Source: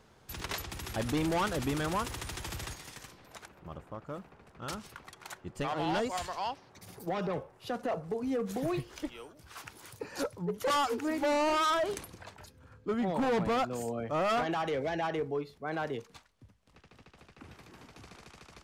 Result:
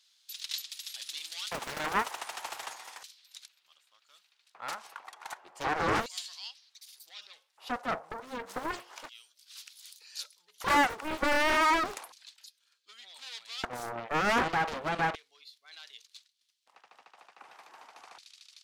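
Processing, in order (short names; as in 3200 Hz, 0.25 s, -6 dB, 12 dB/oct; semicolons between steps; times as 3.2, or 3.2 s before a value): LFO high-pass square 0.33 Hz 820–3900 Hz; Doppler distortion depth 0.77 ms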